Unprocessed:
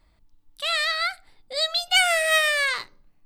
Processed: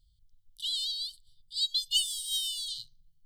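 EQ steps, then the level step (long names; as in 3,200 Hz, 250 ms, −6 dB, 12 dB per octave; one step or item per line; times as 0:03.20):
linear-phase brick-wall band-stop 170–2,900 Hz
−4.5 dB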